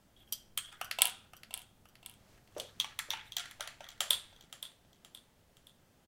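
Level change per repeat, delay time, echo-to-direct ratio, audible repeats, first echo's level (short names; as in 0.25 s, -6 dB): -8.0 dB, 0.521 s, -16.0 dB, 3, -16.5 dB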